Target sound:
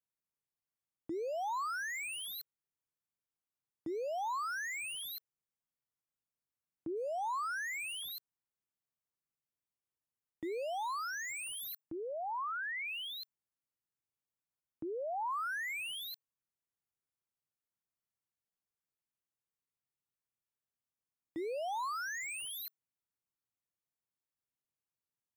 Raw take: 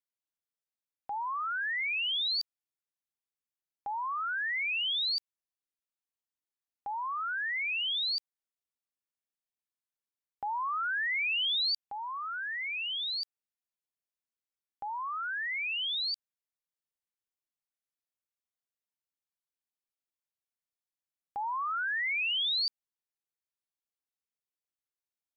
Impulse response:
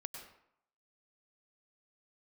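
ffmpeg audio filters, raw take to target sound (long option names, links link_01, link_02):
-af "aeval=exprs='0.0251*(abs(mod(val(0)/0.0251+3,4)-2)-1)':channel_layout=same,afreqshift=-490,equalizer=frequency=125:width_type=o:width=1:gain=9,equalizer=frequency=1000:width_type=o:width=1:gain=3,equalizer=frequency=4000:width_type=o:width=1:gain=-6,volume=-3.5dB"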